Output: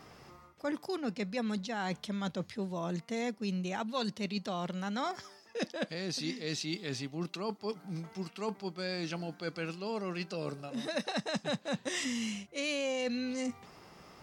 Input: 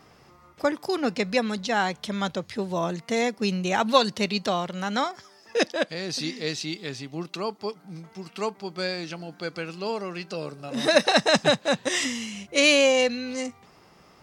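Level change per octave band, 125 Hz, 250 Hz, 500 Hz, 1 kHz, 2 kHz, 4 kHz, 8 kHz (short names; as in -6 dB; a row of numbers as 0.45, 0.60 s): -5.0, -6.5, -12.5, -12.0, -13.0, -12.5, -11.0 dB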